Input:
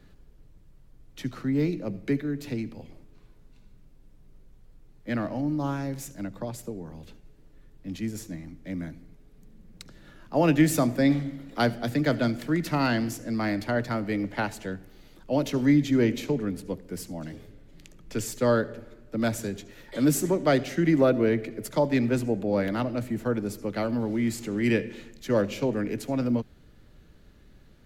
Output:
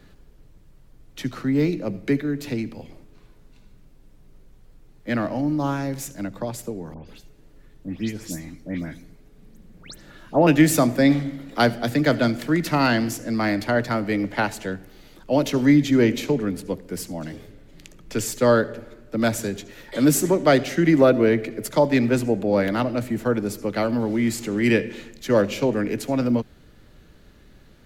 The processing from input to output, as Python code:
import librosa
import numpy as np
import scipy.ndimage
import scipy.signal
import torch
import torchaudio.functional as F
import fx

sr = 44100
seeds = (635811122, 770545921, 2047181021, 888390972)

y = fx.dispersion(x, sr, late='highs', ms=140.0, hz=2800.0, at=(6.94, 10.47))
y = fx.low_shelf(y, sr, hz=250.0, db=-4.0)
y = y * 10.0 ** (6.5 / 20.0)